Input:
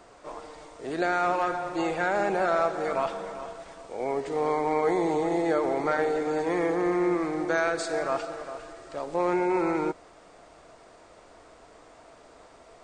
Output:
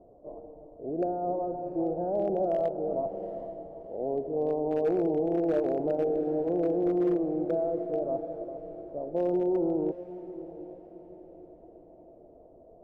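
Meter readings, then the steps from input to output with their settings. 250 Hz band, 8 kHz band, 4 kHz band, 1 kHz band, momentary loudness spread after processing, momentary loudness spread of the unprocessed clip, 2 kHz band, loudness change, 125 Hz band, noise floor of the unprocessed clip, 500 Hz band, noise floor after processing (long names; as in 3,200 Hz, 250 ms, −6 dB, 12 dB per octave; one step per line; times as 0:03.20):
0.0 dB, below −25 dB, below −20 dB, −8.5 dB, 18 LU, 15 LU, below −20 dB, −2.5 dB, 0.0 dB, −53 dBFS, −0.5 dB, −54 dBFS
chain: Chebyshev low-pass filter 660 Hz, order 4
hard clipping −20.5 dBFS, distortion −28 dB
on a send: feedback delay with all-pass diffusion 747 ms, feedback 42%, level −14 dB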